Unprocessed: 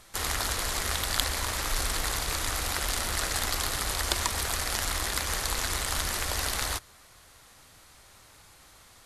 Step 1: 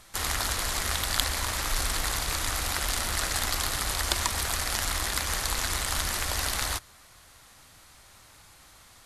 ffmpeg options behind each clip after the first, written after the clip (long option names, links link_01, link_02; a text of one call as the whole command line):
ffmpeg -i in.wav -af "equalizer=frequency=440:width_type=o:width=0.7:gain=-3.5,volume=1dB" out.wav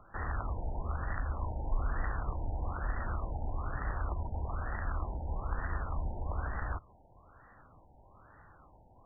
ffmpeg -i in.wav -filter_complex "[0:a]acrossover=split=180[link_01][link_02];[link_02]acompressor=threshold=-33dB:ratio=4[link_03];[link_01][link_03]amix=inputs=2:normalize=0,afftfilt=real='re*lt(b*sr/1024,930*pow(2000/930,0.5+0.5*sin(2*PI*1.1*pts/sr)))':imag='im*lt(b*sr/1024,930*pow(2000/930,0.5+0.5*sin(2*PI*1.1*pts/sr)))':win_size=1024:overlap=0.75" out.wav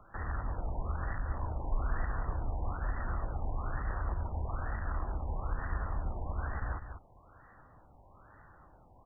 ffmpeg -i in.wav -filter_complex "[0:a]acrossover=split=300[link_01][link_02];[link_02]alimiter=level_in=8dB:limit=-24dB:level=0:latency=1:release=113,volume=-8dB[link_03];[link_01][link_03]amix=inputs=2:normalize=0,asplit=2[link_04][link_05];[link_05]adelay=198.3,volume=-9dB,highshelf=frequency=4000:gain=-4.46[link_06];[link_04][link_06]amix=inputs=2:normalize=0" out.wav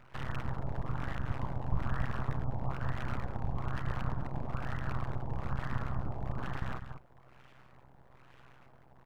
ffmpeg -i in.wav -af "aeval=exprs='abs(val(0))':channel_layout=same,tremolo=f=130:d=0.75,volume=4.5dB" out.wav